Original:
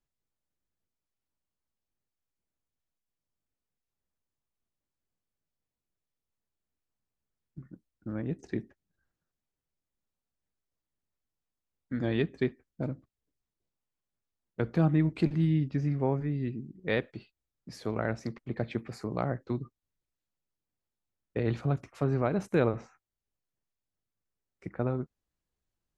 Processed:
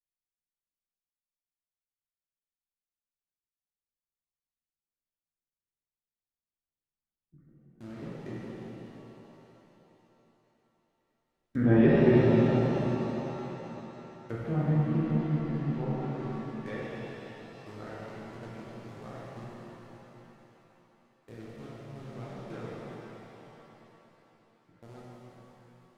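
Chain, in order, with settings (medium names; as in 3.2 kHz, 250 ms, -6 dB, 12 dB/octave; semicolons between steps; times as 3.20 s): Doppler pass-by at 11.54 s, 11 m/s, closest 7.1 m; treble shelf 5.3 kHz -12 dB; in parallel at -6 dB: bit crusher 8-bit; on the sum: low-pass that closes with the level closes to 1.7 kHz, closed at -37 dBFS; thinning echo 549 ms, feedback 65%, high-pass 570 Hz, level -18 dB; pitch-shifted reverb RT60 3.5 s, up +7 st, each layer -8 dB, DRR -7.5 dB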